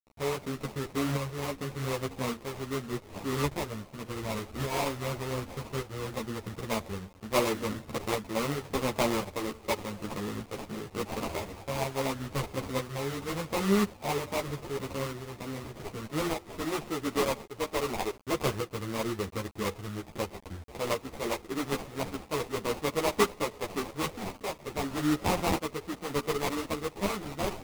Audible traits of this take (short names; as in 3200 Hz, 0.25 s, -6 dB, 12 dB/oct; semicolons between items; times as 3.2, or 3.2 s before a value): a quantiser's noise floor 8-bit, dither none; tremolo saw up 0.86 Hz, depth 50%; aliases and images of a low sample rate 1600 Hz, jitter 20%; a shimmering, thickened sound